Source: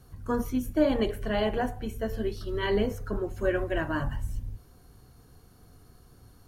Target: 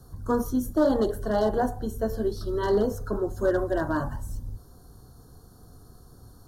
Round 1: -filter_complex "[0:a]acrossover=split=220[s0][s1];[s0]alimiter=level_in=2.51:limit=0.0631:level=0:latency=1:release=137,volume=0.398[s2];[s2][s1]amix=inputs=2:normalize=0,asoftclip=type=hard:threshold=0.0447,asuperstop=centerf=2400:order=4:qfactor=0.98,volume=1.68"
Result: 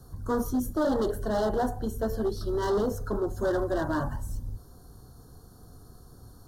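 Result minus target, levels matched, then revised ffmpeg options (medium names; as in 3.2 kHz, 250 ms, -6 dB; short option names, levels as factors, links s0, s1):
hard clipper: distortion +8 dB
-filter_complex "[0:a]acrossover=split=220[s0][s1];[s0]alimiter=level_in=2.51:limit=0.0631:level=0:latency=1:release=137,volume=0.398[s2];[s2][s1]amix=inputs=2:normalize=0,asoftclip=type=hard:threshold=0.0944,asuperstop=centerf=2400:order=4:qfactor=0.98,volume=1.68"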